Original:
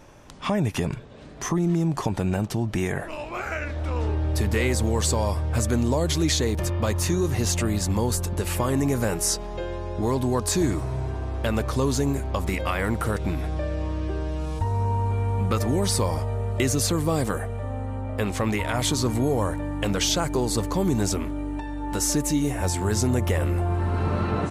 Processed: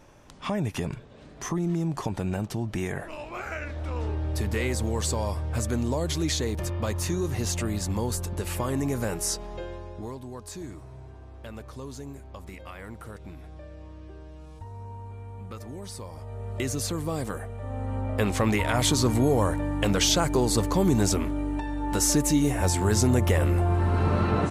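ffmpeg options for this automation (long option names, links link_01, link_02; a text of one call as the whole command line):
ffmpeg -i in.wav -af "volume=12.5dB,afade=type=out:start_time=9.54:duration=0.65:silence=0.266073,afade=type=in:start_time=16.13:duration=0.43:silence=0.334965,afade=type=in:start_time=17.57:duration=0.41:silence=0.421697" out.wav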